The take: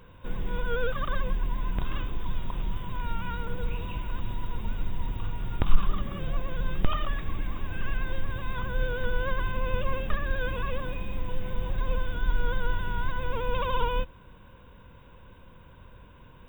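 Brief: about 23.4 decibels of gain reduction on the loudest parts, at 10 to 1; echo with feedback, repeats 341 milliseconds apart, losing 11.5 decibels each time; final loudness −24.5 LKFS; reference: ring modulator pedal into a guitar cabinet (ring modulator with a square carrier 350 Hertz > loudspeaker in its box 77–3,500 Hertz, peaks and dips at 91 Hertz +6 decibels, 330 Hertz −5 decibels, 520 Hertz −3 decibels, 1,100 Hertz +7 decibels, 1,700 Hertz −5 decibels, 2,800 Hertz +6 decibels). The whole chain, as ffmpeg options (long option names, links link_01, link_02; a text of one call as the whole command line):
ffmpeg -i in.wav -af "acompressor=threshold=-33dB:ratio=10,aecho=1:1:341|682|1023:0.266|0.0718|0.0194,aeval=exprs='val(0)*sgn(sin(2*PI*350*n/s))':channel_layout=same,highpass=77,equalizer=frequency=91:width_type=q:width=4:gain=6,equalizer=frequency=330:width_type=q:width=4:gain=-5,equalizer=frequency=520:width_type=q:width=4:gain=-3,equalizer=frequency=1100:width_type=q:width=4:gain=7,equalizer=frequency=1700:width_type=q:width=4:gain=-5,equalizer=frequency=2800:width_type=q:width=4:gain=6,lowpass=frequency=3500:width=0.5412,lowpass=frequency=3500:width=1.3066,volume=12dB" out.wav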